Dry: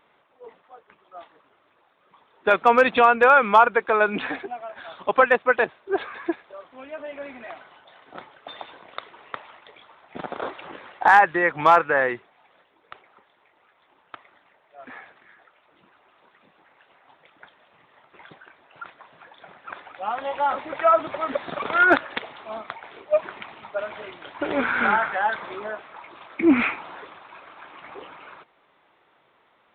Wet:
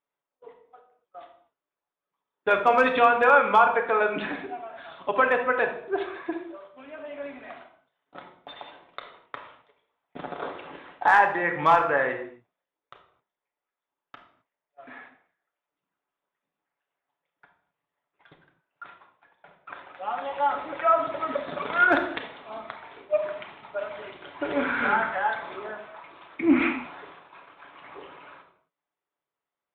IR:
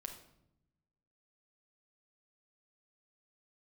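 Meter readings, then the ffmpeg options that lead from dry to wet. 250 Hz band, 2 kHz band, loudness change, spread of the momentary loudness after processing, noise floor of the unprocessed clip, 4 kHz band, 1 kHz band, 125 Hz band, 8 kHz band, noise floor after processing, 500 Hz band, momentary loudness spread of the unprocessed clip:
−2.5 dB, −3.5 dB, −3.0 dB, 23 LU, −63 dBFS, −3.5 dB, −3.0 dB, −2.0 dB, can't be measured, below −85 dBFS, −3.0 dB, 23 LU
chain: -filter_complex "[0:a]agate=range=-25dB:threshold=-45dB:ratio=16:detection=peak[link_01];[1:a]atrim=start_sample=2205,afade=type=out:start_time=0.32:duration=0.01,atrim=end_sample=14553[link_02];[link_01][link_02]afir=irnorm=-1:irlink=0"

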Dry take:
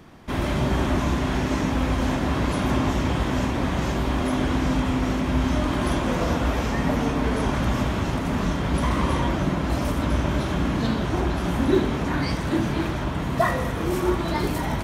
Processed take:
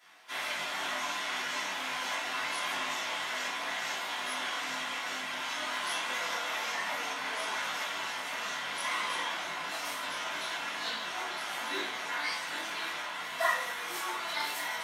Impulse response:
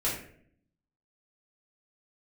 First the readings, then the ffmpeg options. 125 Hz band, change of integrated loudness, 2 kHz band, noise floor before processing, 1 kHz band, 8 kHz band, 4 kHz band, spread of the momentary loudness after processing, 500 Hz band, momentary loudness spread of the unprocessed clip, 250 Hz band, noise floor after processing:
−38.0 dB, −9.5 dB, −1.0 dB, −27 dBFS, −6.5 dB, −0.5 dB, +0.5 dB, 3 LU, −15.5 dB, 2 LU, −27.5 dB, −38 dBFS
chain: -filter_complex "[0:a]highpass=1500,flanger=delay=18.5:depth=3.1:speed=2.1[link_01];[1:a]atrim=start_sample=2205,afade=type=out:start_time=0.15:duration=0.01,atrim=end_sample=7056,asetrate=66150,aresample=44100[link_02];[link_01][link_02]afir=irnorm=-1:irlink=0"

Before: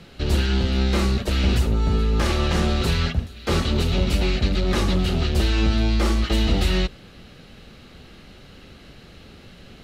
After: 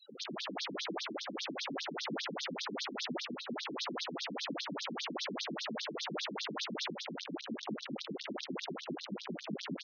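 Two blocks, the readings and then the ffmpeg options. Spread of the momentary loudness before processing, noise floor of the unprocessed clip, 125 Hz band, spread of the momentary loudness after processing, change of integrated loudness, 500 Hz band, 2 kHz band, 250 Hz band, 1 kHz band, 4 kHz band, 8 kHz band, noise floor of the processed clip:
3 LU, −46 dBFS, −29.5 dB, 4 LU, −17.5 dB, −14.5 dB, −11.0 dB, −16.5 dB, −11.0 dB, −10.0 dB, −10.5 dB, −49 dBFS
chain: -filter_complex "[0:a]acrossover=split=170|1000[link_01][link_02][link_03];[link_01]acompressor=threshold=-33dB:ratio=4[link_04];[link_02]acompressor=threshold=-28dB:ratio=4[link_05];[link_03]acompressor=threshold=-37dB:ratio=4[link_06];[link_04][link_05][link_06]amix=inputs=3:normalize=0,asplit=2[link_07][link_08];[link_08]alimiter=level_in=1dB:limit=-24dB:level=0:latency=1:release=134,volume=-1dB,volume=2.5dB[link_09];[link_07][link_09]amix=inputs=2:normalize=0,afftfilt=real='re*gte(hypot(re,im),0.02)':imag='im*gte(hypot(re,im),0.02)':win_size=1024:overlap=0.75,areverse,acompressor=threshold=-36dB:ratio=6,areverse,flanger=delay=1.9:depth=3.8:regen=66:speed=0.7:shape=triangular,aeval=exprs='(mod(84.1*val(0)+1,2)-1)/84.1':channel_layout=same,aecho=1:1:150|247.5|310.9|352.1|378.8:0.631|0.398|0.251|0.158|0.1,afftfilt=real='re*between(b*sr/1024,210*pow(4800/210,0.5+0.5*sin(2*PI*5*pts/sr))/1.41,210*pow(4800/210,0.5+0.5*sin(2*PI*5*pts/sr))*1.41)':imag='im*between(b*sr/1024,210*pow(4800/210,0.5+0.5*sin(2*PI*5*pts/sr))/1.41,210*pow(4800/210,0.5+0.5*sin(2*PI*5*pts/sr))*1.41)':win_size=1024:overlap=0.75,volume=11dB"

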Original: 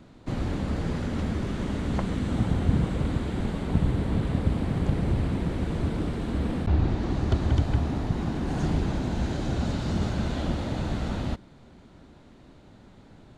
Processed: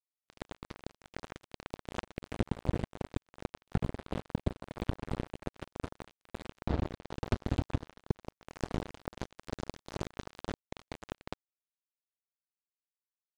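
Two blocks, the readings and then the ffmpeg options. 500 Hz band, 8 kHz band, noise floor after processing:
−8.0 dB, −8.5 dB, below −85 dBFS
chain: -af "acrusher=bits=2:mix=0:aa=0.5,acompressor=threshold=-49dB:ratio=2,volume=9dB"

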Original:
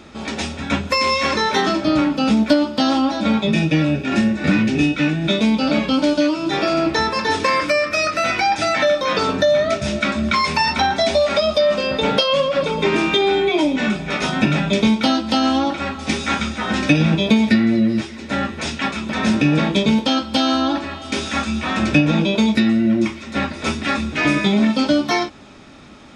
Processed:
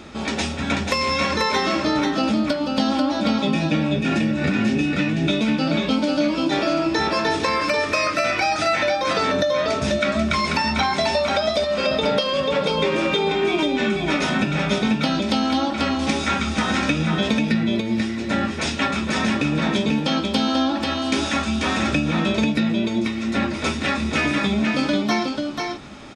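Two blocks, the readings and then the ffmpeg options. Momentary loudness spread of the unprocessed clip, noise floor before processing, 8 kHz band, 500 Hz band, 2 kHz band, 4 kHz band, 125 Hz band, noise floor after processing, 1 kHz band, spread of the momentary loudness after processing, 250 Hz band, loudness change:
7 LU, −33 dBFS, −1.0 dB, −3.0 dB, −2.0 dB, −2.5 dB, −3.0 dB, −27 dBFS, −2.5 dB, 3 LU, −3.5 dB, −3.0 dB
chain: -filter_complex "[0:a]acompressor=threshold=-21dB:ratio=6,asplit=2[link_01][link_02];[link_02]aecho=0:1:489:0.631[link_03];[link_01][link_03]amix=inputs=2:normalize=0,volume=2dB"

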